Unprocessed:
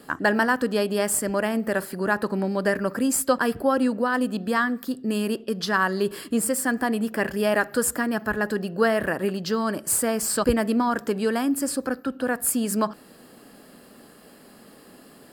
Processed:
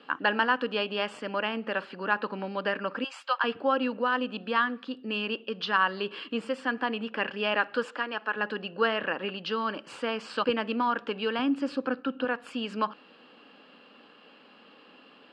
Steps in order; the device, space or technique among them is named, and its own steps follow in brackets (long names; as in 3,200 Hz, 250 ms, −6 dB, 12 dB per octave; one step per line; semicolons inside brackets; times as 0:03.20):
0:03.04–0:03.44: high-pass filter 730 Hz 24 dB per octave
0:07.85–0:08.36: high-pass filter 370 Hz 12 dB per octave
phone earpiece (loudspeaker in its box 370–3,600 Hz, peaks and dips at 380 Hz −8 dB, 660 Hz −9 dB, 1,900 Hz −7 dB, 2,800 Hz +9 dB)
0:11.39–0:12.25: parametric band 110 Hz +9 dB 2.7 octaves